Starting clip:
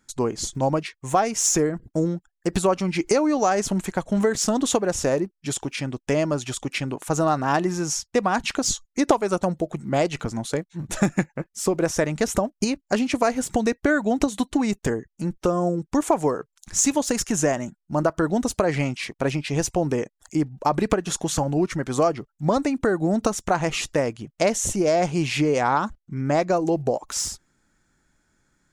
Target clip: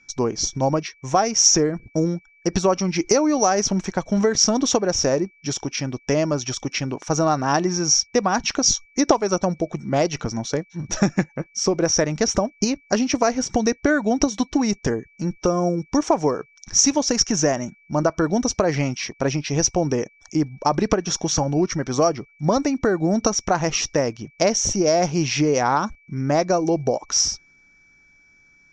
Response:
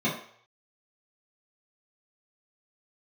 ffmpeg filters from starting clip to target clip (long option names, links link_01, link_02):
-af "aeval=exprs='val(0)+0.00224*sin(2*PI*2300*n/s)':channel_layout=same,lowpass=frequency=5700:width_type=q:width=16,aemphasis=mode=reproduction:type=75fm,volume=1dB"